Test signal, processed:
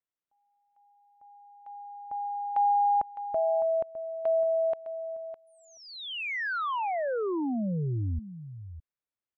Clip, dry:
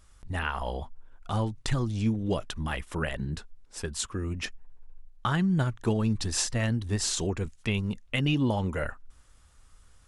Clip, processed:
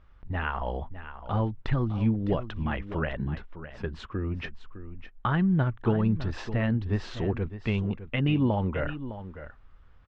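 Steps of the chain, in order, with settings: Bessel low-pass 2100 Hz, order 4; on a send: echo 0.608 s -12.5 dB; on the sum: gain +1.5 dB

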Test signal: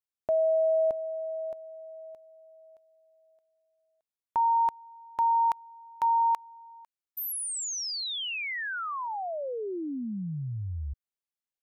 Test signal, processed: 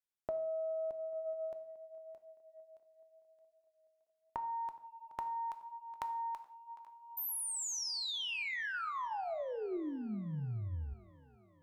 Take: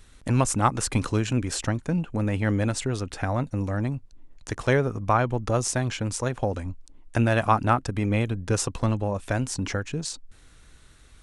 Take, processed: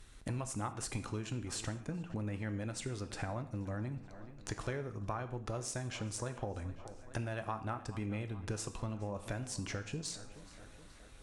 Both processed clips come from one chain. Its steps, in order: tape echo 0.423 s, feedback 66%, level -21 dB, low-pass 5000 Hz; compressor 6:1, threshold -32 dBFS; non-linear reverb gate 0.21 s falling, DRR 8.5 dB; added harmonics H 2 -21 dB, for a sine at -17.5 dBFS; gain -4.5 dB

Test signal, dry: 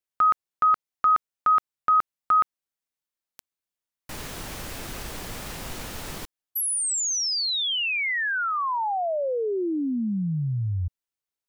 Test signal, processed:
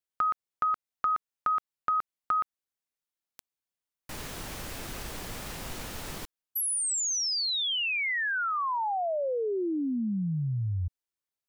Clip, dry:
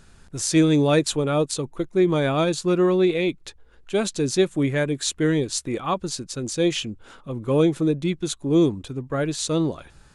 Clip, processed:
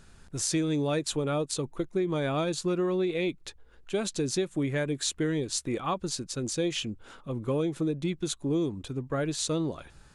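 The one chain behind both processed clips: compressor, threshold -22 dBFS; gain -3 dB

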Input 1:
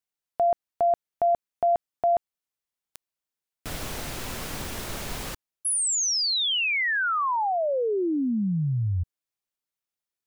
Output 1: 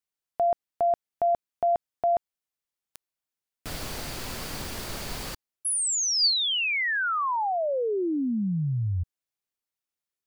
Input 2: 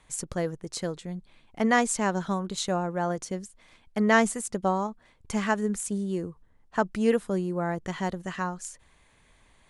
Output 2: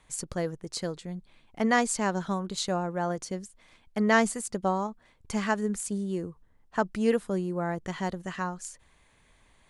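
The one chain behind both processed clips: dynamic EQ 4600 Hz, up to +7 dB, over -57 dBFS, Q 7.1; gain -1.5 dB

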